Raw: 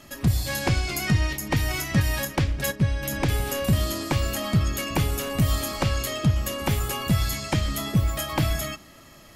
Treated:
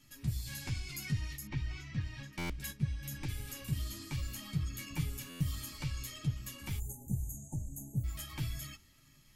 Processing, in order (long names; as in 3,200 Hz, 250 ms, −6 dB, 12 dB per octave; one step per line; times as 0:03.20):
guitar amp tone stack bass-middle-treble 6-0-2
hollow resonant body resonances 890/2,300 Hz, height 8 dB
in parallel at −9 dB: soft clipping −38 dBFS, distortion −9 dB
0:06.79–0:08.04: on the sum: time-frequency box erased 890–6,000 Hz
multi-voice chorus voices 6, 0.83 Hz, delay 11 ms, depth 4.5 ms
0:01.47–0:02.33: high-frequency loss of the air 160 metres
buffer that repeats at 0:02.38/0:05.29, samples 512, times 9
level +2.5 dB